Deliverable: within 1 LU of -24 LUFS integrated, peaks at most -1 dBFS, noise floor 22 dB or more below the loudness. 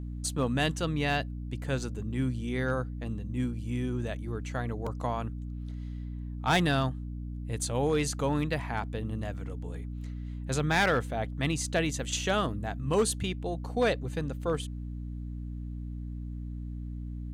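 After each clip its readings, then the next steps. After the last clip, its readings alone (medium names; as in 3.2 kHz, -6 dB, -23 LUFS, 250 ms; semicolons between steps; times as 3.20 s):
clipped samples 0.3%; clipping level -19.0 dBFS; hum 60 Hz; highest harmonic 300 Hz; hum level -35 dBFS; loudness -32.0 LUFS; peak level -19.0 dBFS; loudness target -24.0 LUFS
-> clip repair -19 dBFS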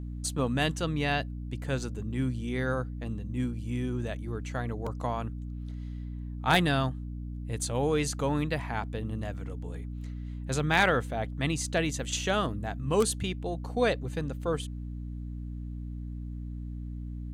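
clipped samples 0.0%; hum 60 Hz; highest harmonic 300 Hz; hum level -35 dBFS
-> de-hum 60 Hz, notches 5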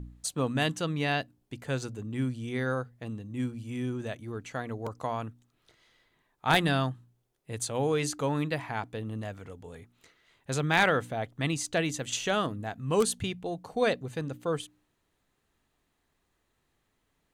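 hum not found; loudness -31.0 LUFS; peak level -9.0 dBFS; loudness target -24.0 LUFS
-> trim +7 dB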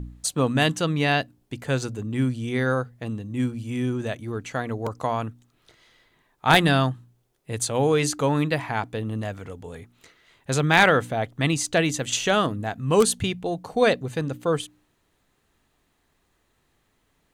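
loudness -24.0 LUFS; peak level -2.0 dBFS; noise floor -69 dBFS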